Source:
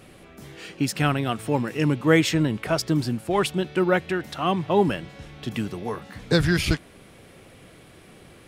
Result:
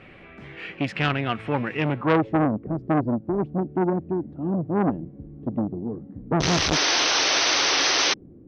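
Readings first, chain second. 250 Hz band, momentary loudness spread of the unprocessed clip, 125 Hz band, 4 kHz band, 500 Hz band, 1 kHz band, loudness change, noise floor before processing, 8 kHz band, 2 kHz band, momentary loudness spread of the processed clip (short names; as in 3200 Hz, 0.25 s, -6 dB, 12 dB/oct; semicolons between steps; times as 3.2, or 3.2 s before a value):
0.0 dB, 13 LU, -2.0 dB, +9.0 dB, -2.0 dB, +2.0 dB, +1.0 dB, -50 dBFS, +10.0 dB, +3.0 dB, 14 LU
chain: low-pass sweep 2300 Hz -> 290 Hz, 1.88–2.39; painted sound noise, 6.4–8.14, 260–6300 Hz -21 dBFS; core saturation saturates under 1200 Hz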